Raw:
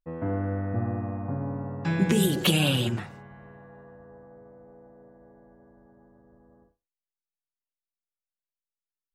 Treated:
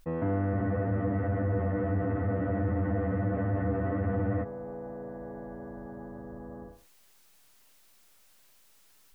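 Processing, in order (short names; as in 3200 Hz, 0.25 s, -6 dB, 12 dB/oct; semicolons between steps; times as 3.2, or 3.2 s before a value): spectral freeze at 0.55, 3.88 s; fast leveller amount 50%; gain -1.5 dB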